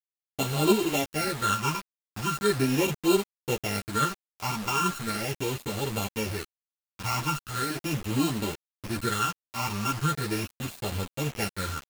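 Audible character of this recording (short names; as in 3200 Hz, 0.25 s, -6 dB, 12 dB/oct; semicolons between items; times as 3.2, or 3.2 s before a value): a buzz of ramps at a fixed pitch in blocks of 32 samples; phasing stages 8, 0.39 Hz, lowest notch 490–1800 Hz; a quantiser's noise floor 6-bit, dither none; a shimmering, thickened sound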